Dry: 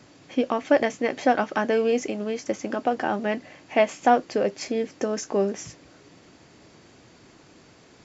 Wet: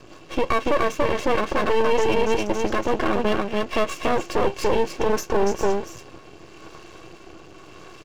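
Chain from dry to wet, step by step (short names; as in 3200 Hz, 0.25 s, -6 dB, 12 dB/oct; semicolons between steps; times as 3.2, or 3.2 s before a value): comb 1.8 ms, depth 70%; small resonant body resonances 330/1100/2700 Hz, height 17 dB, ringing for 45 ms; rotary speaker horn 5 Hz, later 0.85 Hz, at 5.04; echo 0.286 s -5 dB; limiter -15 dBFS, peak gain reduction 11 dB; half-wave rectifier; gain +6.5 dB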